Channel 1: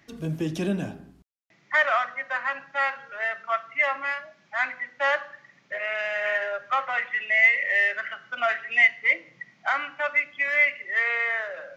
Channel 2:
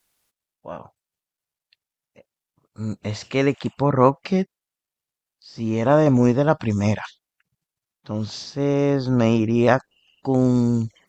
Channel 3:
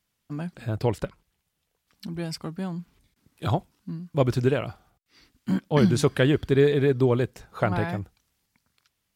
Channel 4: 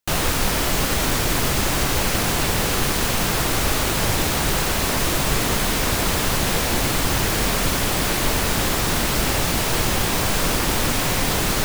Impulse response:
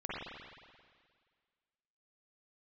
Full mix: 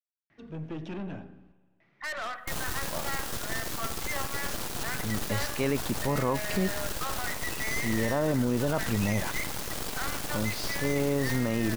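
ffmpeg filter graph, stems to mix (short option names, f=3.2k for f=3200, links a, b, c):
-filter_complex "[0:a]lowpass=2.7k,aeval=exprs='(tanh(25.1*val(0)+0.3)-tanh(0.3))/25.1':c=same,adelay=300,volume=-5dB,asplit=2[a][b];[b]volume=-21dB[c];[1:a]adelay=2250,volume=-4.5dB[d];[3:a]equalizer=f=2.2k:t=o:w=0.77:g=-6.5,aeval=exprs='0.473*(cos(1*acos(clip(val(0)/0.473,-1,1)))-cos(1*PI/2))+0.168*(cos(8*acos(clip(val(0)/0.473,-1,1)))-cos(8*PI/2))':c=same,alimiter=limit=-17.5dB:level=0:latency=1,adelay=2400,volume=-7dB[e];[4:a]atrim=start_sample=2205[f];[c][f]afir=irnorm=-1:irlink=0[g];[a][d][e][g]amix=inputs=4:normalize=0,alimiter=limit=-17.5dB:level=0:latency=1:release=24"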